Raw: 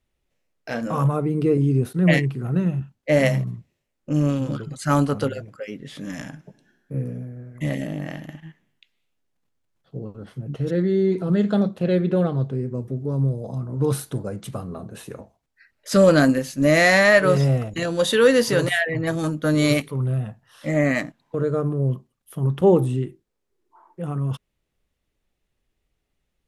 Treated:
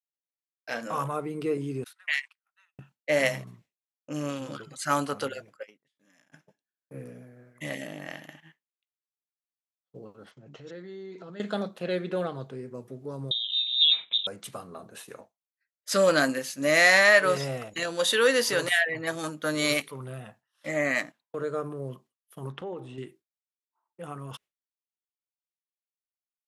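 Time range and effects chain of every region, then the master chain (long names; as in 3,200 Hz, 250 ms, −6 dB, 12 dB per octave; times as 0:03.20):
0:01.84–0:02.79: Bessel high-pass filter 1,700 Hz, order 8 + noise gate −50 dBFS, range −15 dB + high-shelf EQ 6,800 Hz −11.5 dB
0:05.63–0:06.32: noise gate −36 dBFS, range −17 dB + high-pass filter 87 Hz + downward compressor 5 to 1, threshold −44 dBFS
0:10.31–0:11.40: Butterworth low-pass 7,600 Hz 72 dB per octave + downward compressor 3 to 1, threshold −32 dBFS
0:13.31–0:14.27: high-frequency loss of the air 52 metres + voice inversion scrambler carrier 3,800 Hz
0:22.52–0:22.98: low-pass filter 3,700 Hz + downward compressor 16 to 1, threshold −23 dBFS
whole clip: downward expander −37 dBFS; high-pass filter 1,000 Hz 6 dB per octave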